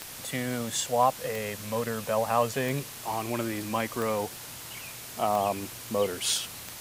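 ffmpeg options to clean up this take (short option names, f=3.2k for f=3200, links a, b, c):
-af "adeclick=t=4,afwtdn=0.0089"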